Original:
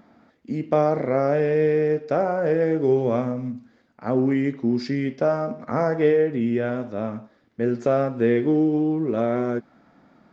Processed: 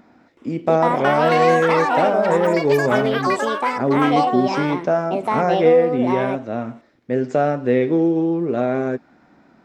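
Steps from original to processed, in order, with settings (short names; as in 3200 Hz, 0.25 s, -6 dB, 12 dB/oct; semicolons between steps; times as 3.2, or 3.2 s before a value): varispeed +7%; echoes that change speed 0.372 s, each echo +7 st, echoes 3; gain +2.5 dB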